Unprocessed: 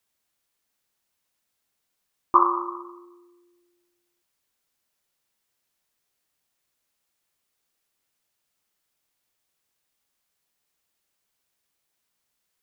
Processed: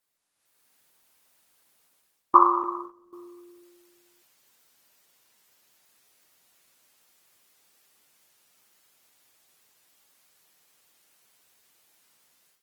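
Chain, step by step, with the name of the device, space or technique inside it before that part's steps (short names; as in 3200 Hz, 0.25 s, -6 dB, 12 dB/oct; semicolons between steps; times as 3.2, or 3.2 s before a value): 2.63–3.13 gate -39 dBFS, range -17 dB; video call (HPF 160 Hz 6 dB/oct; AGC gain up to 15 dB; gain -1.5 dB; Opus 20 kbps 48000 Hz)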